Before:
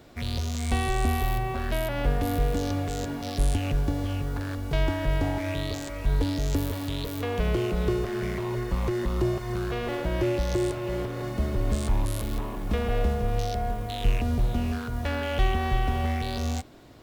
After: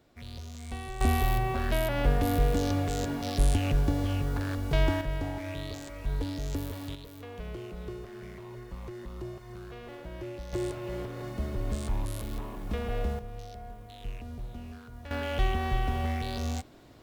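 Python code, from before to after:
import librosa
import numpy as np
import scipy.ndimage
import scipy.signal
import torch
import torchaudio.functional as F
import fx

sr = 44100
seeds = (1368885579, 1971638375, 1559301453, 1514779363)

y = fx.gain(x, sr, db=fx.steps((0.0, -12.5), (1.01, 0.0), (5.01, -7.0), (6.95, -14.0), (10.53, -6.0), (13.19, -15.0), (15.11, -3.5)))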